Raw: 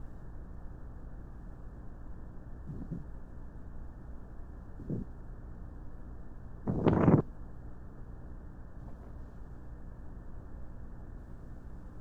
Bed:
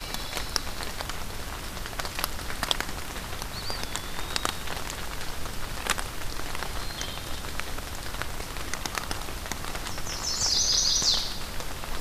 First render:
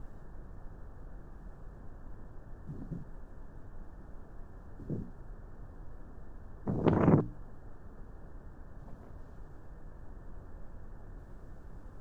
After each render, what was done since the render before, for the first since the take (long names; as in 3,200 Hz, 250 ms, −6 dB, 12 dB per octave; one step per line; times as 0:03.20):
mains-hum notches 60/120/180/240/300 Hz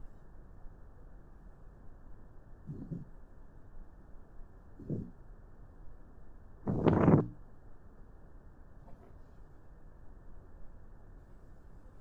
noise reduction from a noise print 6 dB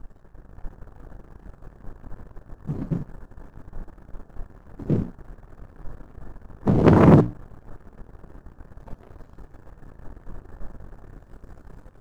leveller curve on the samples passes 2
automatic gain control gain up to 8 dB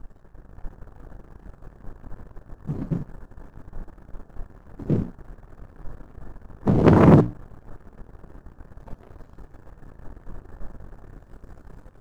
no processing that can be heard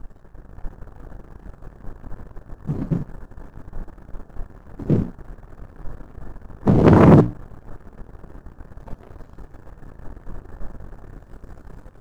level +4 dB
brickwall limiter −3 dBFS, peak gain reduction 3 dB